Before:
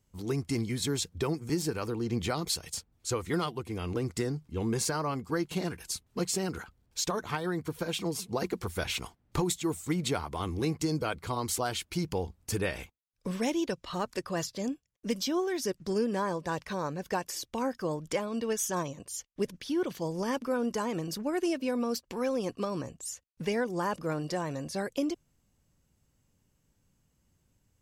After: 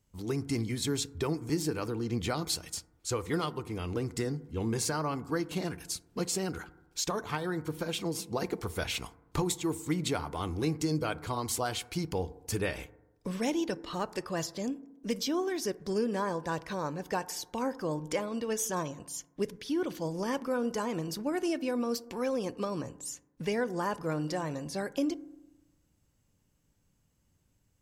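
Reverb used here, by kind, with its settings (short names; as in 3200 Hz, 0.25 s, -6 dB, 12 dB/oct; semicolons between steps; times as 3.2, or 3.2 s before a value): FDN reverb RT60 1 s, low-frequency decay 1.1×, high-frequency decay 0.25×, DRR 15.5 dB; gain -1 dB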